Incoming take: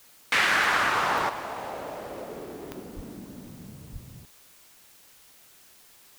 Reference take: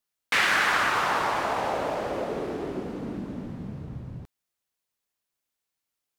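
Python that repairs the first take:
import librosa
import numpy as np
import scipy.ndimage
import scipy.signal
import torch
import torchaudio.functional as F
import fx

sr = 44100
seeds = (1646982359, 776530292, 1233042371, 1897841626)

y = fx.fix_declick_ar(x, sr, threshold=10.0)
y = fx.highpass(y, sr, hz=140.0, slope=24, at=(2.95, 3.07), fade=0.02)
y = fx.highpass(y, sr, hz=140.0, slope=24, at=(3.92, 4.04), fade=0.02)
y = fx.noise_reduce(y, sr, print_start_s=4.7, print_end_s=5.2, reduce_db=30.0)
y = fx.fix_level(y, sr, at_s=1.29, step_db=8.0)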